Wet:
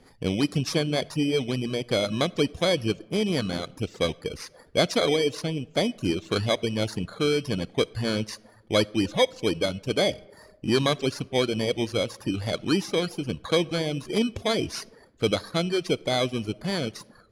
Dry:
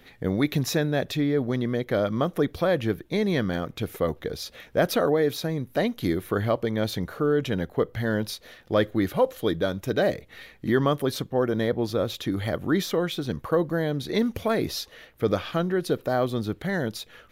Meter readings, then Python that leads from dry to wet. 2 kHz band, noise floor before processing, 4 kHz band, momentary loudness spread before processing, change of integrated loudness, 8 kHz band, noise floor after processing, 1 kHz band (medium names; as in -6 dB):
0.0 dB, -54 dBFS, +6.5 dB, 6 LU, 0.0 dB, +3.5 dB, -55 dBFS, -2.0 dB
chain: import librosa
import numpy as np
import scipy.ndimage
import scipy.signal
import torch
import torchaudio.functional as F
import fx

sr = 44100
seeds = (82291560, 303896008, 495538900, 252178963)

y = fx.bit_reversed(x, sr, seeds[0], block=16)
y = scipy.signal.sosfilt(scipy.signal.butter(2, 5700.0, 'lowpass', fs=sr, output='sos'), y)
y = fx.dynamic_eq(y, sr, hz=4300.0, q=0.92, threshold_db=-48.0, ratio=4.0, max_db=8)
y = fx.rev_freeverb(y, sr, rt60_s=1.2, hf_ratio=0.45, predelay_ms=10, drr_db=12.0)
y = fx.dereverb_blind(y, sr, rt60_s=0.68)